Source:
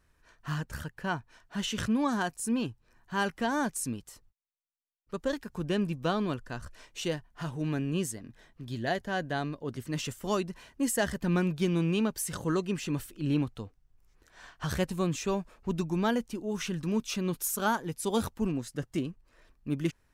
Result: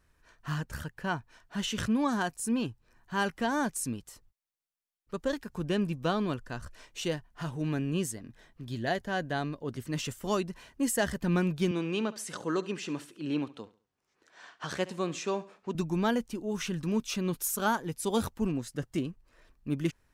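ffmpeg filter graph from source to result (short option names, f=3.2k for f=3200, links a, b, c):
-filter_complex "[0:a]asettb=1/sr,asplit=3[a][b][c];[a]atrim=end=11.714[d];[b]atrim=start=11.71:end=15.75,asetpts=PTS-STARTPTS,afade=t=in:d=0.004:c=qsin,afade=t=out:st=4.036:d=0.004:c=qsin,deesser=0.35,highpass=260,lowpass=7.1k,aecho=1:1:69|138|207:0.126|0.0428|0.0146,atrim=end_sample=178164[e];[c]atrim=start=15.746[f];[d][e]acrossfade=d=0.004:c1=hsin:c2=qsin[g];[g][f]acrossfade=d=0.004:c1=qsin:c2=hsin"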